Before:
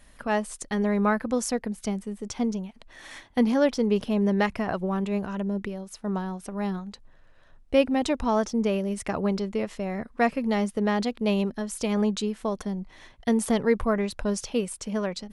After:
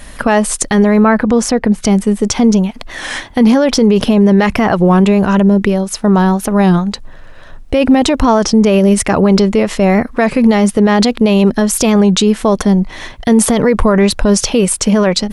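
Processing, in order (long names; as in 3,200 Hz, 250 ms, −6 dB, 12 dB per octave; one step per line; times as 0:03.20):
0:01.03–0:01.85: low-pass filter 2,400 Hz 6 dB per octave
boost into a limiter +22.5 dB
wow of a warped record 33 1/3 rpm, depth 100 cents
level −1 dB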